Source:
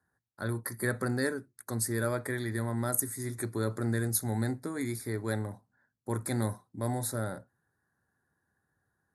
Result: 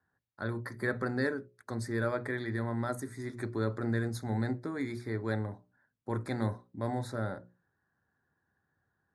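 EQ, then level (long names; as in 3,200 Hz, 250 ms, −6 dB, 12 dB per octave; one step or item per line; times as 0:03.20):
low-pass filter 3,700 Hz 12 dB per octave
mains-hum notches 60/120/180/240/300/360/420/480/540/600 Hz
0.0 dB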